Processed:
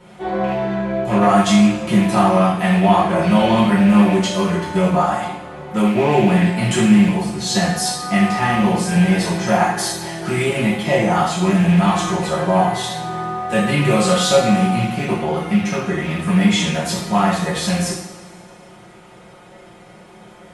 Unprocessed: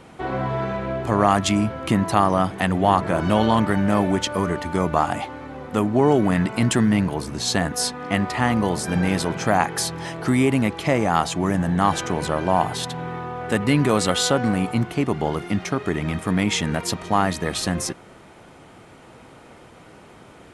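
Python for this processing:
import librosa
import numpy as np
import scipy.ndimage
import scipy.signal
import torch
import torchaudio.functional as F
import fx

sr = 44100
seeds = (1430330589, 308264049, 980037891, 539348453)

y = fx.rattle_buzz(x, sr, strikes_db=-23.0, level_db=-19.0)
y = y + 0.58 * np.pad(y, (int(5.6 * sr / 1000.0), 0))[:len(y)]
y = fx.rev_double_slope(y, sr, seeds[0], early_s=0.67, late_s=2.5, knee_db=-18, drr_db=-8.5)
y = F.gain(torch.from_numpy(y), -7.0).numpy()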